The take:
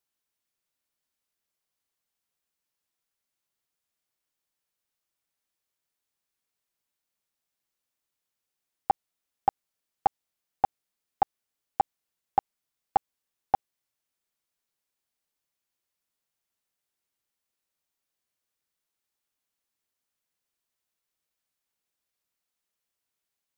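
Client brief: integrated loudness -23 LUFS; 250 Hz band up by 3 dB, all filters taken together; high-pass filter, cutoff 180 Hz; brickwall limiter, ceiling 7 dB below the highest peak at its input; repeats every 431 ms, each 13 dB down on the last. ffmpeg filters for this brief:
-af "highpass=180,equalizer=f=250:t=o:g=5.5,alimiter=limit=0.133:level=0:latency=1,aecho=1:1:431|862|1293:0.224|0.0493|0.0108,volume=5.96"

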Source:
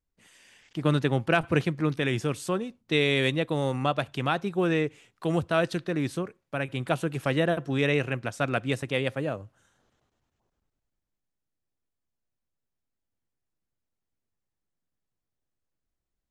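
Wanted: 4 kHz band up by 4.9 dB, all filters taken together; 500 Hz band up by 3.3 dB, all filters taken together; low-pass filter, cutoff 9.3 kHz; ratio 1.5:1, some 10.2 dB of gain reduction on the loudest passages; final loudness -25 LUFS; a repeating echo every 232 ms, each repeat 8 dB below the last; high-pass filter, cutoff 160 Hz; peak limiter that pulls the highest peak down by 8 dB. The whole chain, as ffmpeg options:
-af "highpass=160,lowpass=9300,equalizer=f=500:t=o:g=4,equalizer=f=4000:t=o:g=6,acompressor=threshold=0.00501:ratio=1.5,alimiter=level_in=1.12:limit=0.0631:level=0:latency=1,volume=0.891,aecho=1:1:232|464|696|928|1160:0.398|0.159|0.0637|0.0255|0.0102,volume=3.98"

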